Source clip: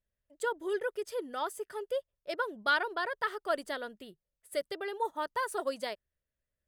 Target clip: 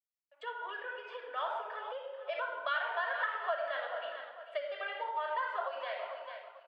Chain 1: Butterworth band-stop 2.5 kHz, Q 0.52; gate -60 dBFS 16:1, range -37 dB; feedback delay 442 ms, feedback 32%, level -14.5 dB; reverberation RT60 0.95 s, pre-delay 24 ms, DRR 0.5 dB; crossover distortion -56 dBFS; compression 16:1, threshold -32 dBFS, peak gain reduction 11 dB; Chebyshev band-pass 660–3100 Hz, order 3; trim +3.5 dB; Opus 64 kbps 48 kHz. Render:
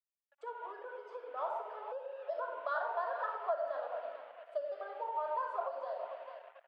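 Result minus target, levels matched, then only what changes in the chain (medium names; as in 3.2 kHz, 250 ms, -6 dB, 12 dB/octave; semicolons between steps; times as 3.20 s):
2 kHz band -7.5 dB; crossover distortion: distortion +9 dB
change: crossover distortion -64.5 dBFS; remove: Butterworth band-stop 2.5 kHz, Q 0.52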